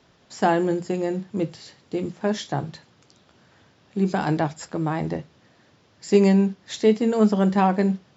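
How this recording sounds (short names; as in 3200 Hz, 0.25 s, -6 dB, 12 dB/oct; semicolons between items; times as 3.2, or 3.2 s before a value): noise floor -59 dBFS; spectral tilt -6.5 dB/oct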